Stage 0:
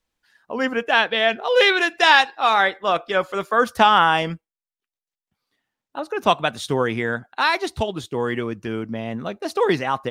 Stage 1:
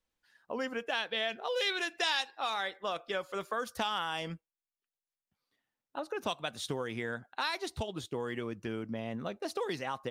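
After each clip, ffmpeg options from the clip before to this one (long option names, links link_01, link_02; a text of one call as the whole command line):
ffmpeg -i in.wav -filter_complex "[0:a]equalizer=frequency=530:width=6.8:gain=3,acrossover=split=3600[link_01][link_02];[link_01]acompressor=threshold=-25dB:ratio=6[link_03];[link_03][link_02]amix=inputs=2:normalize=0,volume=-7.5dB" out.wav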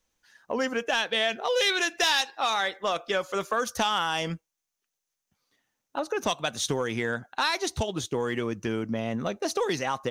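ffmpeg -i in.wav -filter_complex "[0:a]equalizer=frequency=6200:width_type=o:width=0.27:gain=10,asplit=2[link_01][link_02];[link_02]aeval=exprs='0.133*sin(PI/2*2*val(0)/0.133)':channel_layout=same,volume=-9.5dB[link_03];[link_01][link_03]amix=inputs=2:normalize=0,volume=2dB" out.wav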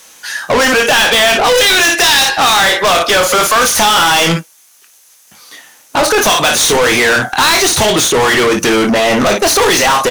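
ffmpeg -i in.wav -filter_complex "[0:a]equalizer=frequency=11000:width=0.92:gain=11,aecho=1:1:24|56:0.376|0.2,asplit=2[link_01][link_02];[link_02]highpass=frequency=720:poles=1,volume=35dB,asoftclip=type=tanh:threshold=-11dB[link_03];[link_01][link_03]amix=inputs=2:normalize=0,lowpass=frequency=7300:poles=1,volume=-6dB,volume=7.5dB" out.wav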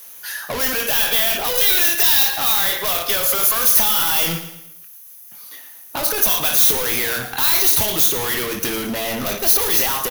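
ffmpeg -i in.wav -filter_complex "[0:a]acrossover=split=140|3000[link_01][link_02][link_03];[link_02]acompressor=threshold=-19dB:ratio=2.5[link_04];[link_01][link_04][link_03]amix=inputs=3:normalize=0,aexciter=amount=7.1:drive=6.6:freq=11000,asplit=2[link_05][link_06];[link_06]aecho=0:1:113|226|339|452:0.266|0.112|0.0469|0.0197[link_07];[link_05][link_07]amix=inputs=2:normalize=0,volume=-8.5dB" out.wav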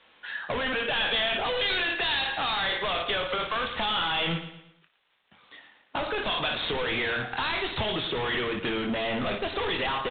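ffmpeg -i in.wav -af "volume=-4dB" -ar 8000 -c:a adpcm_g726 -b:a 32k out.wav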